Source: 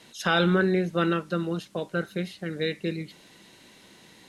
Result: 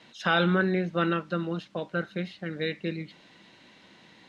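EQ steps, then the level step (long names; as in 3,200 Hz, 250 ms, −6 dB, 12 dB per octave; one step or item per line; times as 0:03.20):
low-pass filter 3,900 Hz 12 dB per octave
low-shelf EQ 79 Hz −9 dB
parametric band 410 Hz −5 dB 0.46 octaves
0.0 dB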